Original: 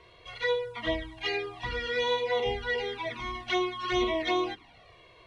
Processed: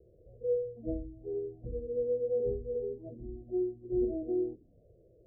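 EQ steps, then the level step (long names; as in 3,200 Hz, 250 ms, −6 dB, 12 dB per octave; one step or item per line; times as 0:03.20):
Butterworth low-pass 580 Hz 72 dB per octave
−1.0 dB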